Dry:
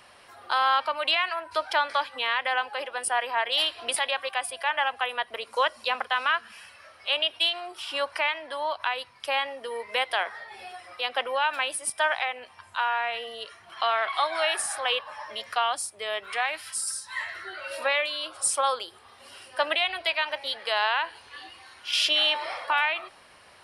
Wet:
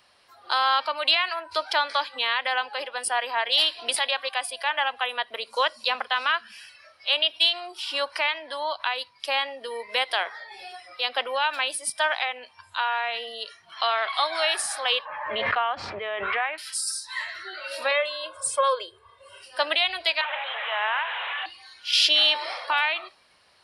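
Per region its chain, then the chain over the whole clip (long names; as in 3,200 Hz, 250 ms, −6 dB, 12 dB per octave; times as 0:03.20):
0:15.05–0:16.58: low-pass filter 2,400 Hz 24 dB per octave + background raised ahead of every attack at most 29 dB per second
0:17.91–0:19.43: low-pass filter 9,500 Hz 24 dB per octave + parametric band 5,000 Hz −14 dB 1.3 octaves + comb filter 1.9 ms, depth 94%
0:20.21–0:21.46: linear delta modulator 16 kbit/s, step −24 dBFS + high-pass filter 670 Hz 24 dB per octave
whole clip: noise reduction from a noise print of the clip's start 9 dB; parametric band 4,400 Hz +8 dB 0.8 octaves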